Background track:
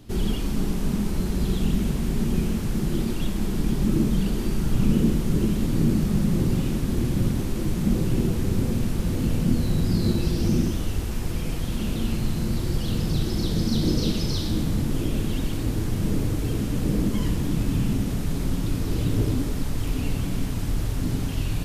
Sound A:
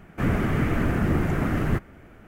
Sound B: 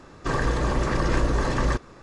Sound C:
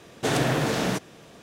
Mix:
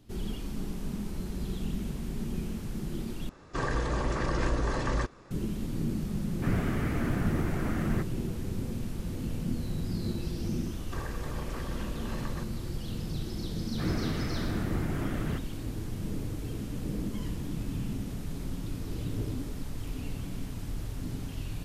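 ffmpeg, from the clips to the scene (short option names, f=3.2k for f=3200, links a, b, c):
-filter_complex "[2:a]asplit=2[a][b];[1:a]asplit=2[c][d];[0:a]volume=-10.5dB[e];[b]acompressor=threshold=-26dB:ratio=6:attack=3.2:release=140:knee=1:detection=peak[f];[e]asplit=2[g][h];[g]atrim=end=3.294[i];[a]atrim=end=2.02,asetpts=PTS-STARTPTS,volume=-6dB[j];[h]atrim=start=5.306[k];[c]atrim=end=2.27,asetpts=PTS-STARTPTS,volume=-7.5dB,afade=t=in:d=0.004:c=hsin,afade=t=out:st=2.266:d=0.004:c=hsin,adelay=6240[l];[f]atrim=end=2.02,asetpts=PTS-STARTPTS,volume=-8.5dB,afade=t=in:d=0.004:c=hsin,afade=t=out:st=2.016:d=0.004:c=hsin,adelay=10670[m];[d]atrim=end=2.27,asetpts=PTS-STARTPTS,volume=-10dB,afade=t=in:d=0.004:c=hsin,afade=t=out:st=2.266:d=0.004:c=hsin,adelay=13600[n];[i][j]acrossfade=d=0.004:c1=hsin:c2=hsin[o];[o][k]acrossfade=d=0.004:c1=hsin:c2=hsin[p];[p][l][m][n]amix=inputs=4:normalize=0"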